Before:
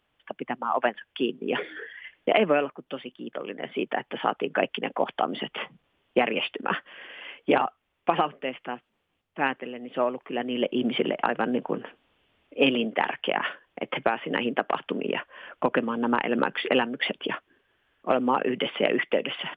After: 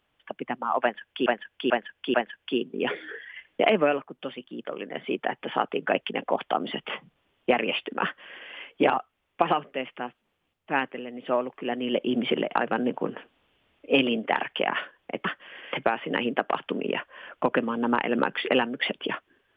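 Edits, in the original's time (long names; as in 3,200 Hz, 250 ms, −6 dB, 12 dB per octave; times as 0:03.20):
0:00.82–0:01.26: repeat, 4 plays
0:06.71–0:07.19: duplicate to 0:13.93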